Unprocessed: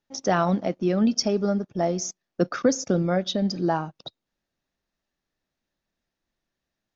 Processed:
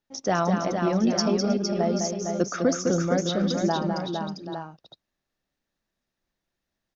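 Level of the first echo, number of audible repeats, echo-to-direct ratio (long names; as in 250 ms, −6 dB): −6.0 dB, 5, −1.5 dB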